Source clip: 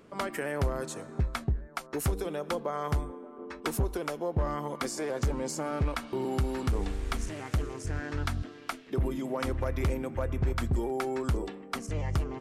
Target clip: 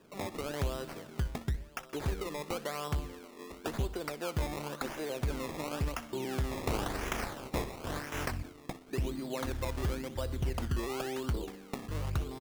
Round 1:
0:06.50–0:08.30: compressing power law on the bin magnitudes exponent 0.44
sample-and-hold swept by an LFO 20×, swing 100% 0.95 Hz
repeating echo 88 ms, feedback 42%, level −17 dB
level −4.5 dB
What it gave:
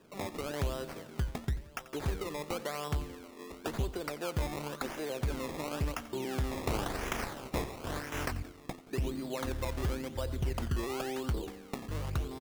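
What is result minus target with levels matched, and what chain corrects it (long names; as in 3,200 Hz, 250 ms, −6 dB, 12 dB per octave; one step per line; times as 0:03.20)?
echo 26 ms late
0:06.50–0:08.30: compressing power law on the bin magnitudes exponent 0.44
sample-and-hold swept by an LFO 20×, swing 100% 0.95 Hz
repeating echo 62 ms, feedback 42%, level −17 dB
level −4.5 dB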